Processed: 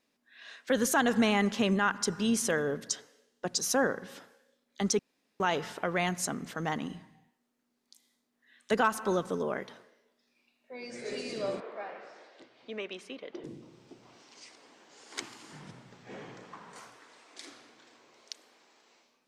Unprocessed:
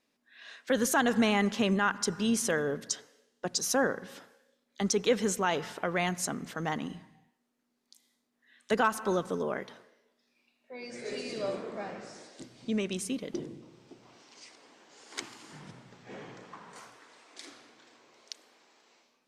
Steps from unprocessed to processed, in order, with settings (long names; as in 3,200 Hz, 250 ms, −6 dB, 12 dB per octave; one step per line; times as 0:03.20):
0:04.99–0:05.40: fill with room tone
0:11.60–0:13.44: three-way crossover with the lows and the highs turned down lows −22 dB, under 390 Hz, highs −24 dB, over 3,800 Hz